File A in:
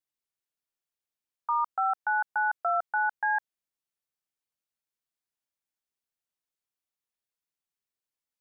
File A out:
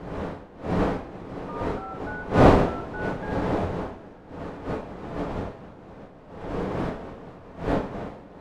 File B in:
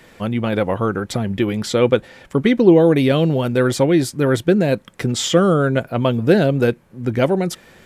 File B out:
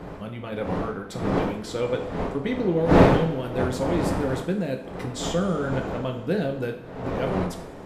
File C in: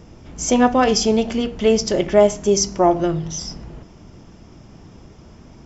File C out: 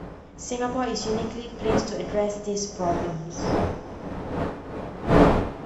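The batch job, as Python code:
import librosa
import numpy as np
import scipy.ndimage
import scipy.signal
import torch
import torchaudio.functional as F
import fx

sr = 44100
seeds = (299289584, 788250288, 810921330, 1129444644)

y = fx.dmg_wind(x, sr, seeds[0], corner_hz=570.0, level_db=-16.0)
y = fx.rev_double_slope(y, sr, seeds[1], early_s=0.46, late_s=2.8, knee_db=-17, drr_db=3.0)
y = F.gain(torch.from_numpy(y), -13.0).numpy()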